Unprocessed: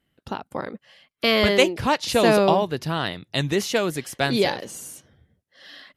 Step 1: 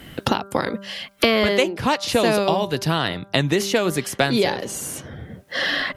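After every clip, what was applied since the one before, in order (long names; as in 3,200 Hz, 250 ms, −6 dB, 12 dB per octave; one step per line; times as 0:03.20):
hum removal 197.4 Hz, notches 8
multiband upward and downward compressor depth 100%
level +1.5 dB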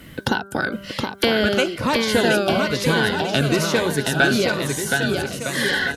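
hollow resonant body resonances 1,500 Hz, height 17 dB, ringing for 50 ms
on a send: bouncing-ball delay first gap 720 ms, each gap 0.75×, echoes 5
on the sum: phaser whose notches keep moving one way falling 1.1 Hz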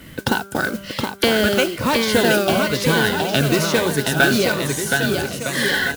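noise that follows the level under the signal 15 dB
level +1.5 dB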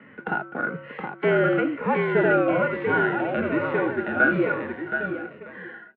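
fade-out on the ending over 1.50 s
harmonic and percussive parts rebalanced percussive −12 dB
single-sideband voice off tune −53 Hz 260–2,300 Hz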